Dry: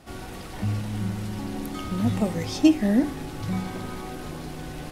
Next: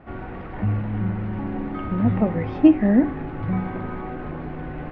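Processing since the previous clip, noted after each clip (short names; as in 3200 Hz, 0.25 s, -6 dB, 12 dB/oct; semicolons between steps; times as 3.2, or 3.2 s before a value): LPF 2100 Hz 24 dB/oct; gain +4 dB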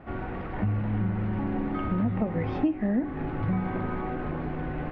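compressor 6:1, threshold -23 dBFS, peak gain reduction 14.5 dB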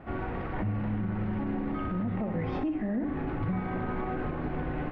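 on a send: flutter echo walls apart 10.5 m, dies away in 0.37 s; on the sum: limiter -23.5 dBFS, peak gain reduction 9 dB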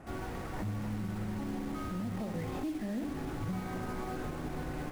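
CVSD 64 kbps; in parallel at -9 dB: wrapped overs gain 36.5 dB; on the sum: gain -5.5 dB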